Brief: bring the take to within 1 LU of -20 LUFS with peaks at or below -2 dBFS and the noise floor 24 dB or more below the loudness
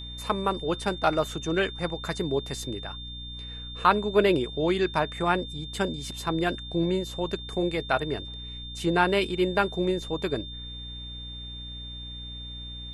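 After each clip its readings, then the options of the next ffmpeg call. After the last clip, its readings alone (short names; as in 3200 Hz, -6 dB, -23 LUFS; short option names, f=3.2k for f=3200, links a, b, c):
hum 60 Hz; harmonics up to 300 Hz; hum level -39 dBFS; steady tone 3600 Hz; tone level -39 dBFS; loudness -28.5 LUFS; peak -6.5 dBFS; loudness target -20.0 LUFS
-> -af "bandreject=f=60:t=h:w=4,bandreject=f=120:t=h:w=4,bandreject=f=180:t=h:w=4,bandreject=f=240:t=h:w=4,bandreject=f=300:t=h:w=4"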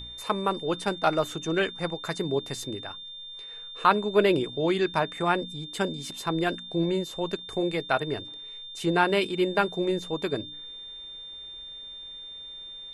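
hum none; steady tone 3600 Hz; tone level -39 dBFS
-> -af "bandreject=f=3.6k:w=30"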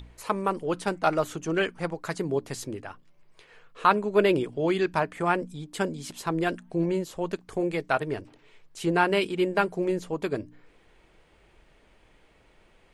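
steady tone none; loudness -27.5 LUFS; peak -6.5 dBFS; loudness target -20.0 LUFS
-> -af "volume=7.5dB,alimiter=limit=-2dB:level=0:latency=1"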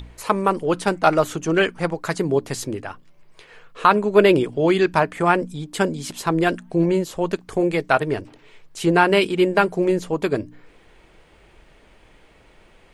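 loudness -20.5 LUFS; peak -2.0 dBFS; noise floor -53 dBFS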